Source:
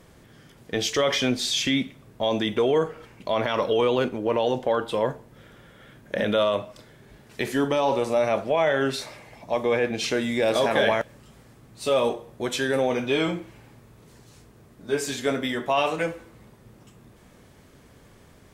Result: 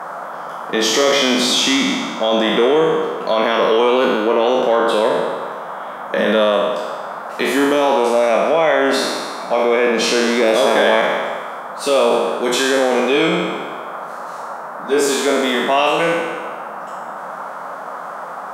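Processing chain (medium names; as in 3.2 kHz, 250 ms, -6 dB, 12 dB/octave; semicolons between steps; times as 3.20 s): spectral sustain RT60 1.42 s; elliptic high-pass 170 Hz, stop band 40 dB; in parallel at +3 dB: peak limiter -15.5 dBFS, peak gain reduction 9 dB; on the sum: band noise 530–1400 Hz -29 dBFS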